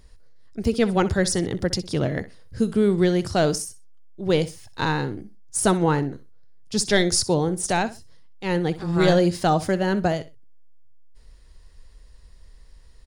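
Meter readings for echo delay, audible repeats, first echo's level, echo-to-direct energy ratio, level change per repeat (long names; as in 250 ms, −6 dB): 63 ms, 2, −16.0 dB, −16.0 dB, −13.0 dB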